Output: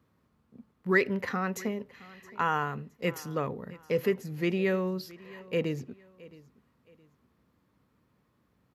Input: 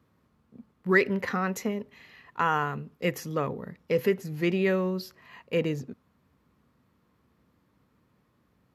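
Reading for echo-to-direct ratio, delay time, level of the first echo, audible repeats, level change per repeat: -20.5 dB, 668 ms, -21.0 dB, 2, -10.0 dB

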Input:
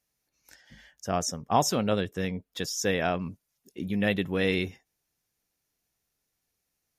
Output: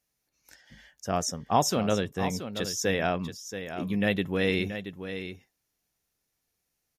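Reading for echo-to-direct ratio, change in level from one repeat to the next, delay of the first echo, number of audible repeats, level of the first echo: -10.0 dB, no regular repeats, 678 ms, 1, -10.0 dB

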